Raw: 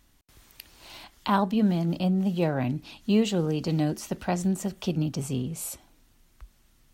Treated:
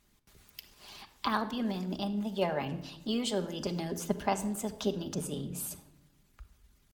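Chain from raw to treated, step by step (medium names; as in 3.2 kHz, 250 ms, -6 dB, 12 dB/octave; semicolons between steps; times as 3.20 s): Chebyshev shaper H 3 -27 dB, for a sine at -10 dBFS; pitch shift +1.5 st; harmonic-percussive split harmonic -12 dB; simulated room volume 3100 m³, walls furnished, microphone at 1.3 m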